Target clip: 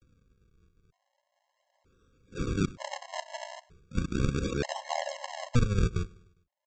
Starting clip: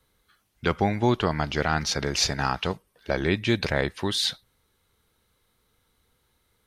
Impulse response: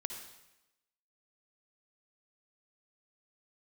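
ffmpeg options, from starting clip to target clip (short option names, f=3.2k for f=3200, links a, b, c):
-filter_complex "[0:a]areverse,agate=range=-15dB:threshold=-55dB:ratio=16:detection=peak,lowpass=f=3.7k:w=0.5412,lowpass=f=3.7k:w=1.3066,alimiter=limit=-12.5dB:level=0:latency=1:release=18,aresample=16000,acrusher=samples=34:mix=1:aa=0.000001:lfo=1:lforange=54.4:lforate=0.37,aresample=44100,acompressor=mode=upward:threshold=-46dB:ratio=2.5,asplit=2[a][b];[b]aecho=0:1:101|202|303|404:0.0708|0.0375|0.0199|0.0105[c];[a][c]amix=inputs=2:normalize=0,afftfilt=real='re*gt(sin(2*PI*0.54*pts/sr)*(1-2*mod(floor(b*sr/1024/550),2)),0)':imag='im*gt(sin(2*PI*0.54*pts/sr)*(1-2*mod(floor(b*sr/1024/550),2)),0)':win_size=1024:overlap=0.75"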